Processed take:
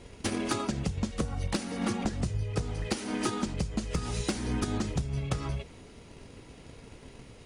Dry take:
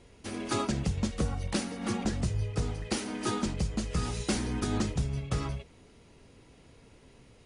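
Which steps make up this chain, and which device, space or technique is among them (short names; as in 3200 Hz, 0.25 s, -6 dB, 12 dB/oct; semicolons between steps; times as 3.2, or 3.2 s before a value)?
drum-bus smash (transient shaper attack +8 dB, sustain +1 dB; compressor 12:1, threshold -31 dBFS, peak gain reduction 14 dB; soft clip -25 dBFS, distortion -18 dB); gain +6 dB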